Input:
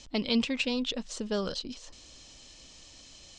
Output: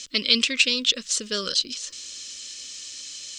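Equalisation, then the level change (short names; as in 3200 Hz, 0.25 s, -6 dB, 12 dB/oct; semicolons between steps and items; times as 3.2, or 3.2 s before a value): Butterworth band-stop 810 Hz, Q 1.3; tilt +4 dB/oct; +6.0 dB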